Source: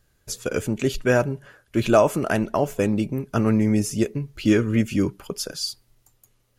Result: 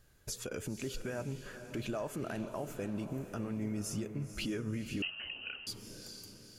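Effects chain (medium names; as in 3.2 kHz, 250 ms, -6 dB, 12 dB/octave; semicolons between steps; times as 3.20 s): compression 6:1, threshold -31 dBFS, peak gain reduction 18 dB; peak limiter -28 dBFS, peak gain reduction 9 dB; on a send: echo that smears into a reverb 511 ms, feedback 48%, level -10 dB; 5.02–5.67 s: on the sum: frequency inversion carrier 3 kHz; trim -1 dB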